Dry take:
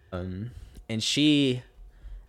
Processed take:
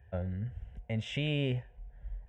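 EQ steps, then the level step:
head-to-tape spacing loss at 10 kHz 29 dB
phaser with its sweep stopped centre 1,200 Hz, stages 6
+2.0 dB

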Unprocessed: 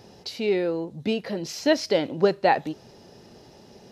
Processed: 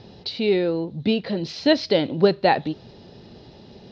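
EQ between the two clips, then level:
low-pass with resonance 4,000 Hz, resonance Q 3.2
high-frequency loss of the air 79 metres
low-shelf EQ 310 Hz +8.5 dB
0.0 dB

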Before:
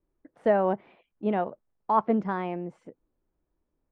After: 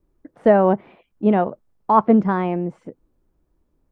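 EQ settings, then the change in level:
low-shelf EQ 400 Hz +7.5 dB
parametric band 1,200 Hz +2 dB
+5.5 dB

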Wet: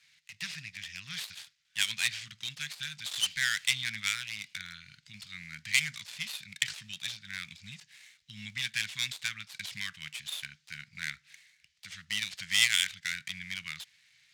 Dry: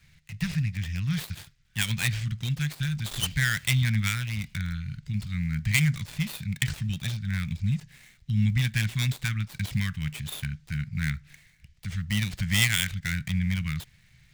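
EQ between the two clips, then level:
resonant band-pass 4,300 Hz, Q 0.71
+2.0 dB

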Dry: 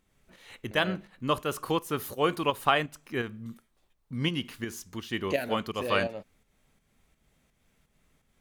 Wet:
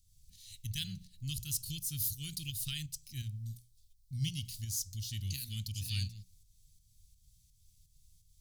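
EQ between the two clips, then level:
Chebyshev band-stop filter 110–4,600 Hz, order 3
mains-hum notches 60/120/180 Hz
+7.5 dB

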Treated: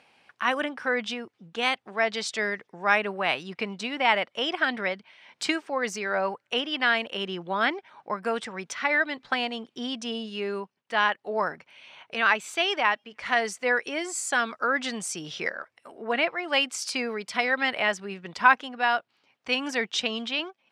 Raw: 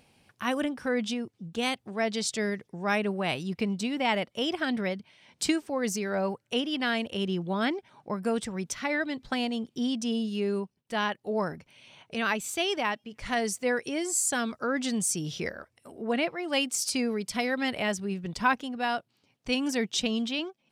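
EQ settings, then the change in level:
resonant band-pass 1,500 Hz, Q 0.78
+8.0 dB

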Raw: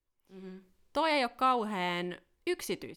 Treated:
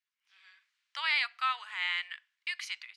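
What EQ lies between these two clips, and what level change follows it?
inverse Chebyshev high-pass filter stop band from 270 Hz, stop band 80 dB
high-frequency loss of the air 99 metres
high-shelf EQ 4,500 Hz −4.5 dB
+8.0 dB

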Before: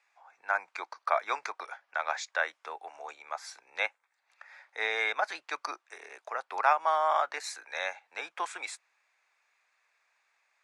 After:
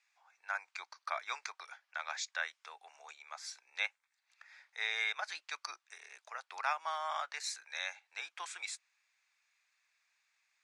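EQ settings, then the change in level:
resonant band-pass 6,300 Hz, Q 0.66
high-shelf EQ 9,500 Hz −6 dB
+2.0 dB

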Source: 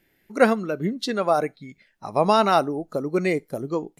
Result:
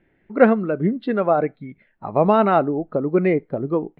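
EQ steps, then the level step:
dynamic equaliser 970 Hz, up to −4 dB, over −30 dBFS, Q 1.6
moving average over 7 samples
high-frequency loss of the air 490 metres
+6.0 dB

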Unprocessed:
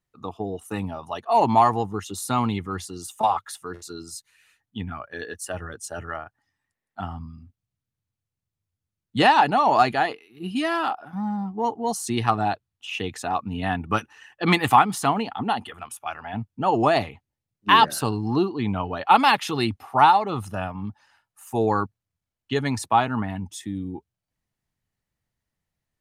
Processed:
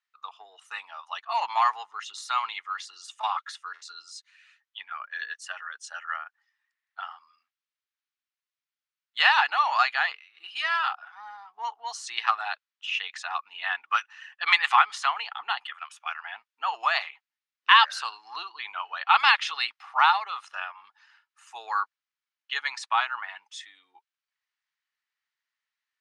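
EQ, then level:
high-pass filter 1,200 Hz 24 dB per octave
low-pass filter 6,400 Hz 12 dB per octave
high-frequency loss of the air 80 metres
+4.0 dB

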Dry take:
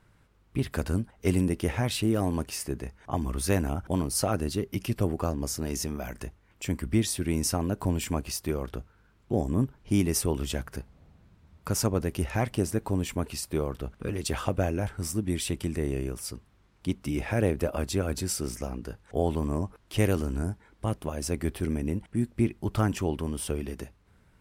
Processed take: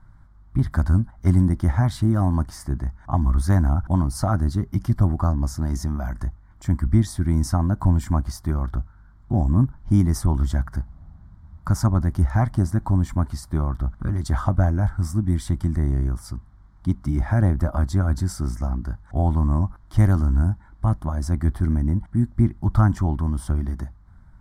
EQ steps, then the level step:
low-pass filter 1,800 Hz 6 dB per octave
low-shelf EQ 68 Hz +12 dB
phaser with its sweep stopped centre 1,100 Hz, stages 4
+8.0 dB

